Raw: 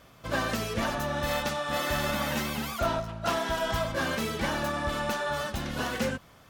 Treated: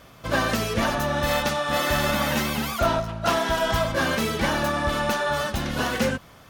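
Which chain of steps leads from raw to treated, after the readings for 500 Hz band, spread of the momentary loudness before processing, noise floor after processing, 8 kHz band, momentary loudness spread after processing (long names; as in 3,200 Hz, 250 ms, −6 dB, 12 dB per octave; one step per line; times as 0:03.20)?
+6.0 dB, 3 LU, −49 dBFS, +5.5 dB, 3 LU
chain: notch filter 7,600 Hz, Q 24
level +6 dB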